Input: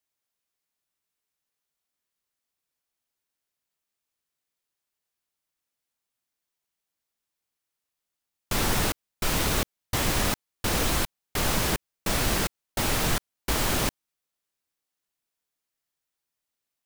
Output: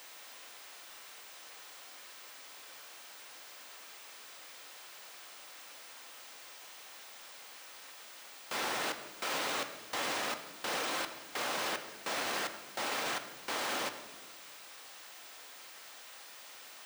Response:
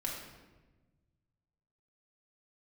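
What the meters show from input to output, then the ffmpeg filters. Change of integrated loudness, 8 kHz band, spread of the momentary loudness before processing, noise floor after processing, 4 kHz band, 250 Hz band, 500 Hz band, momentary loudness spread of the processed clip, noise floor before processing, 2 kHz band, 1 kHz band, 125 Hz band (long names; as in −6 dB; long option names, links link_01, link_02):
−13.0 dB, −10.5 dB, 6 LU, −52 dBFS, −6.5 dB, −15.0 dB, −7.5 dB, 15 LU, below −85 dBFS, −5.0 dB, −5.0 dB, −28.0 dB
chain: -filter_complex "[0:a]aeval=exprs='val(0)+0.5*0.0106*sgn(val(0))':channel_layout=same,highpass=490,alimiter=limit=-24dB:level=0:latency=1,equalizer=frequency=16000:width=0.32:gain=-14,asplit=2[link_01][link_02];[1:a]atrim=start_sample=2205[link_03];[link_02][link_03]afir=irnorm=-1:irlink=0,volume=-4.5dB[link_04];[link_01][link_04]amix=inputs=2:normalize=0,volume=-3dB"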